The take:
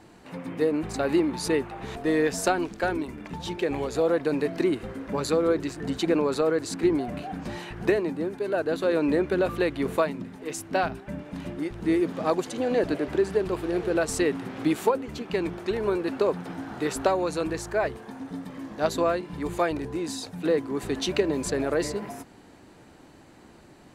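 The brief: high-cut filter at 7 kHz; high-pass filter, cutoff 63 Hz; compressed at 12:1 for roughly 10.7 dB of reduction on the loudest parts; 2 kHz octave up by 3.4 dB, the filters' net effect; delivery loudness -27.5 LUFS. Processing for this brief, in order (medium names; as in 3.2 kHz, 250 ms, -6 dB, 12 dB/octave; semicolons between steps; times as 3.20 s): high-pass 63 Hz; low-pass 7 kHz; peaking EQ 2 kHz +4.5 dB; compression 12:1, threshold -28 dBFS; trim +6.5 dB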